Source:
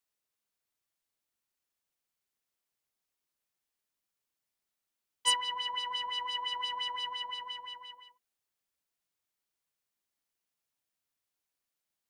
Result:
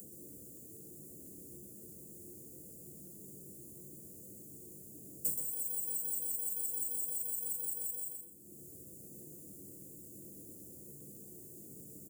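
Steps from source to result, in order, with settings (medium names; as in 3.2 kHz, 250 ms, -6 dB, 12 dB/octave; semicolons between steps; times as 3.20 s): careless resampling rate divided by 4×, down none, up zero stuff; compression 10:1, threshold -43 dBFS, peak gain reduction 28 dB; reverberation RT60 0.40 s, pre-delay 3 ms, DRR -4.5 dB; upward compressor, threshold -43 dBFS; inverse Chebyshev band-stop 1.1–3.4 kHz, stop band 60 dB; peaking EQ 3.8 kHz -3.5 dB 1.3 oct; feedback delay 126 ms, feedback 29%, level -6 dB; trim +12 dB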